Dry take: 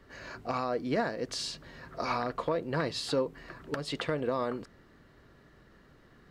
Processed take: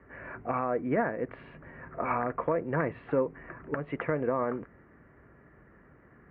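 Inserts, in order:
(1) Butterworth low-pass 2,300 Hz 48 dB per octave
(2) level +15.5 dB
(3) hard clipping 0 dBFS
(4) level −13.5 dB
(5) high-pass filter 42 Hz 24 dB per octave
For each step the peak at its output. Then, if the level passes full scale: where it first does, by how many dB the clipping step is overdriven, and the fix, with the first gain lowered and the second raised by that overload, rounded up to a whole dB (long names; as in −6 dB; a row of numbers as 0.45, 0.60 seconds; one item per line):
−17.0, −1.5, −1.5, −15.0, −13.5 dBFS
no step passes full scale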